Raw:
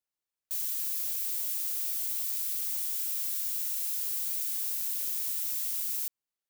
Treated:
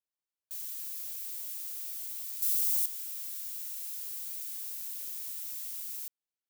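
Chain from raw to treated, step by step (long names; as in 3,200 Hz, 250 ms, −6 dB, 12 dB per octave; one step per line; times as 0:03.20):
0:02.42–0:02.86: high-shelf EQ 2,900 Hz +11.5 dB
level −7 dB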